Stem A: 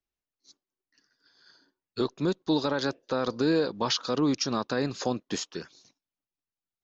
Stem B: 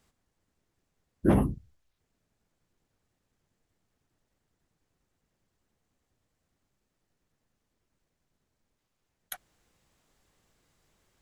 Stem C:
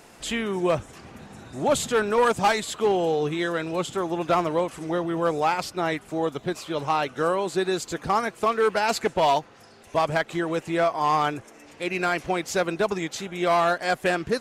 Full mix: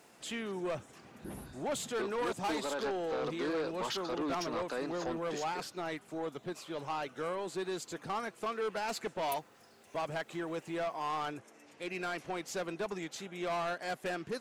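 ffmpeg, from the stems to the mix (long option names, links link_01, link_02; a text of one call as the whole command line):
ffmpeg -i stem1.wav -i stem2.wav -i stem3.wav -filter_complex "[0:a]highpass=350,equalizer=frequency=5100:width=0.94:gain=-7.5,volume=-3.5dB[link_01];[1:a]acompressor=threshold=-32dB:ratio=2.5,crystalizer=i=6.5:c=0,volume=-14.5dB[link_02];[2:a]highpass=130,volume=-10dB[link_03];[link_01][link_02][link_03]amix=inputs=3:normalize=0,asoftclip=type=tanh:threshold=-30dB" out.wav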